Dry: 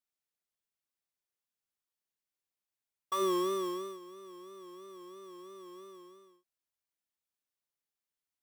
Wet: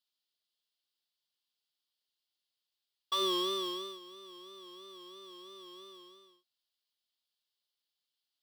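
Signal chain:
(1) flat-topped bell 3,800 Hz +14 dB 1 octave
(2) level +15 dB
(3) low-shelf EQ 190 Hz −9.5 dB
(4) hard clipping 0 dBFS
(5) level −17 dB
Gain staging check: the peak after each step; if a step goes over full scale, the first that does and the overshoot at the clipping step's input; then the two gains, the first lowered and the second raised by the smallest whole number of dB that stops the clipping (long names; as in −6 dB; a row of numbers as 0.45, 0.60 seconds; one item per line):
−17.5, −2.5, −3.0, −3.0, −20.0 dBFS
no step passes full scale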